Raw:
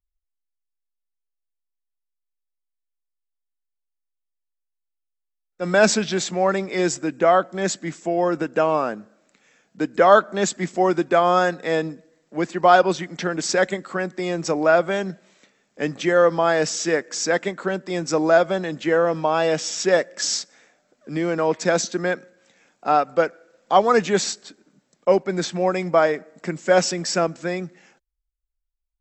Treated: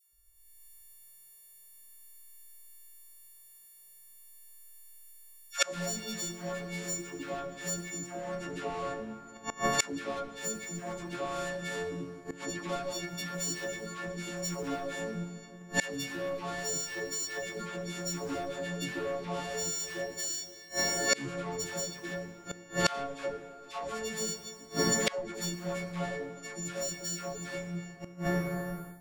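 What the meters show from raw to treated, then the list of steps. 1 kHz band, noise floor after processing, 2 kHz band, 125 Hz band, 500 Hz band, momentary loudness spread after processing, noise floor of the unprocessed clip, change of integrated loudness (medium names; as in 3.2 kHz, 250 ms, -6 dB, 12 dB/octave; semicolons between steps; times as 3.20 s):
-17.5 dB, -56 dBFS, -11.0 dB, -8.0 dB, -17.0 dB, 23 LU, -80 dBFS, -14.0 dB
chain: partials quantised in pitch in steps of 4 st; compression 4:1, threshold -21 dBFS, peak gain reduction 12 dB; saturation -24.5 dBFS, distortion -10 dB; treble shelf 6.6 kHz +8 dB; hum notches 50/100/150/200/250/300/350 Hz; phase dispersion lows, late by 126 ms, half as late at 710 Hz; pre-echo 71 ms -23 dB; plate-style reverb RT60 2.6 s, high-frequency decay 0.6×, DRR 6.5 dB; level rider gain up to 13.5 dB; bass shelf 410 Hz +8 dB; inverted gate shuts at -19 dBFS, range -29 dB; trim +6.5 dB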